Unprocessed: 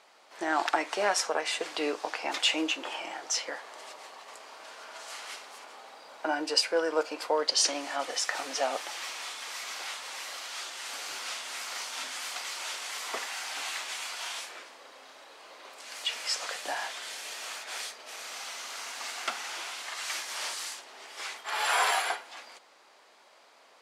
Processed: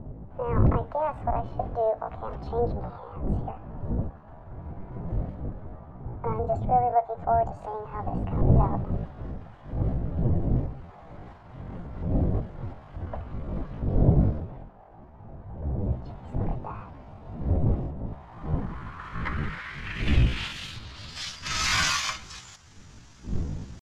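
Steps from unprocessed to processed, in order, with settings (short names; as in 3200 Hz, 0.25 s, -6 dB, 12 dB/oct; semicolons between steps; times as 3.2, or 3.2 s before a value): wind noise 86 Hz -29 dBFS; low-pass sweep 450 Hz -> 4100 Hz, 18.07–21.55; pitch shift +7 st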